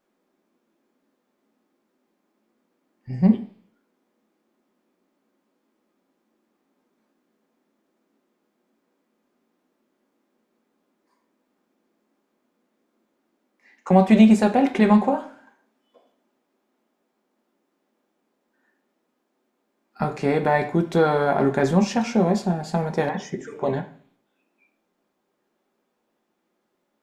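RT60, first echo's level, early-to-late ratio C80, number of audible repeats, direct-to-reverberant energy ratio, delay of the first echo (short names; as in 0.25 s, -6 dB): 0.45 s, none, 17.5 dB, none, 4.5 dB, none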